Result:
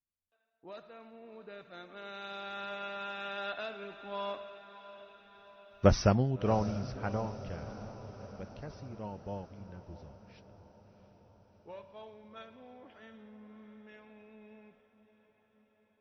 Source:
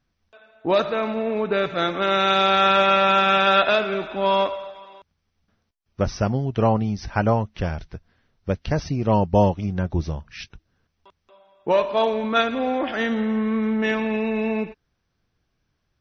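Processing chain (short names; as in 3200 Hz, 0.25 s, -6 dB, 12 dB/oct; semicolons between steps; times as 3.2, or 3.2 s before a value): Doppler pass-by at 5.88, 9 m/s, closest 1.9 m; on a send: diffused feedback echo 0.683 s, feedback 61%, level -14 dB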